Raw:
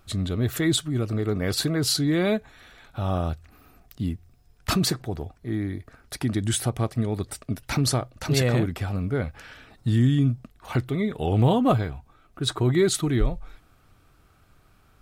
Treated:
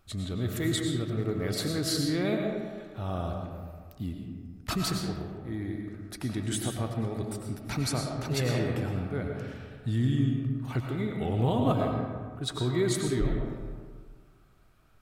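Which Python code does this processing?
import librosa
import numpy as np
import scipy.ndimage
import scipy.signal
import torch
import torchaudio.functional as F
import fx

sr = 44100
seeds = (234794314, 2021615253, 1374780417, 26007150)

y = fx.rev_freeverb(x, sr, rt60_s=1.7, hf_ratio=0.45, predelay_ms=65, drr_db=1.5)
y = y * librosa.db_to_amplitude(-7.5)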